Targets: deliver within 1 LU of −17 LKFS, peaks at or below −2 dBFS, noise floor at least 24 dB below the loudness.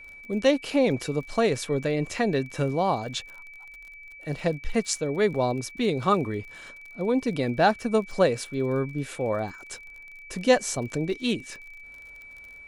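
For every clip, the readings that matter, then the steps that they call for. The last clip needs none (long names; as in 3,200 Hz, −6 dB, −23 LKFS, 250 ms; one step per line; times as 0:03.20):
crackle rate 40 per second; interfering tone 2,300 Hz; level of the tone −43 dBFS; integrated loudness −26.0 LKFS; sample peak −8.0 dBFS; target loudness −17.0 LKFS
→ click removal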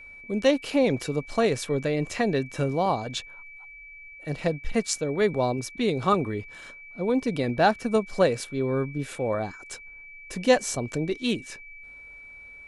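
crackle rate 0.079 per second; interfering tone 2,300 Hz; level of the tone −43 dBFS
→ notch filter 2,300 Hz, Q 30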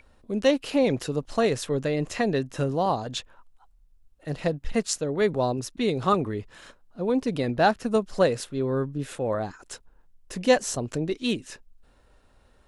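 interfering tone none found; integrated loudness −26.5 LKFS; sample peak −8.0 dBFS; target loudness −17.0 LKFS
→ level +9.5 dB
brickwall limiter −2 dBFS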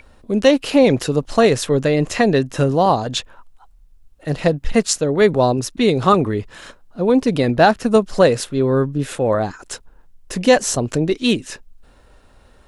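integrated loudness −17.5 LKFS; sample peak −2.0 dBFS; background noise floor −50 dBFS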